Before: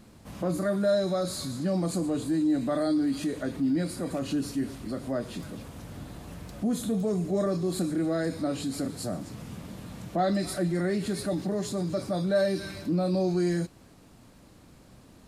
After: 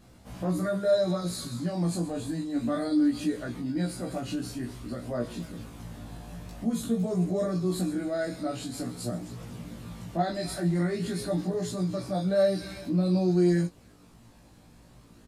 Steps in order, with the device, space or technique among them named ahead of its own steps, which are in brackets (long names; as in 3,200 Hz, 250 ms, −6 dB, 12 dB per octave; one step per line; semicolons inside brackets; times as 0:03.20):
double-tracked vocal (double-tracking delay 17 ms −3 dB; chorus effect 0.24 Hz, delay 15.5 ms, depth 2.7 ms)